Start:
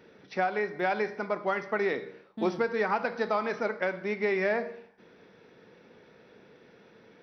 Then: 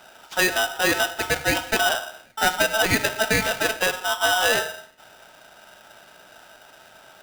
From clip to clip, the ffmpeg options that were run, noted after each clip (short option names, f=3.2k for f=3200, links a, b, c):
-af "aeval=exprs='val(0)*sgn(sin(2*PI*1100*n/s))':c=same,volume=7dB"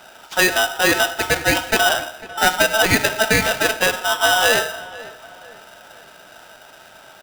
-filter_complex "[0:a]asplit=2[a][b];[b]adelay=497,lowpass=f=2.4k:p=1,volume=-17.5dB,asplit=2[c][d];[d]adelay=497,lowpass=f=2.4k:p=1,volume=0.44,asplit=2[e][f];[f]adelay=497,lowpass=f=2.4k:p=1,volume=0.44,asplit=2[g][h];[h]adelay=497,lowpass=f=2.4k:p=1,volume=0.44[i];[a][c][e][g][i]amix=inputs=5:normalize=0,volume=4.5dB"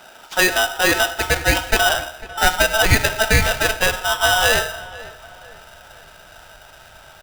-af "asubboost=boost=9:cutoff=84"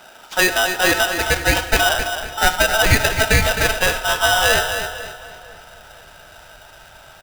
-af "aecho=1:1:263|526|789|1052:0.376|0.113|0.0338|0.0101"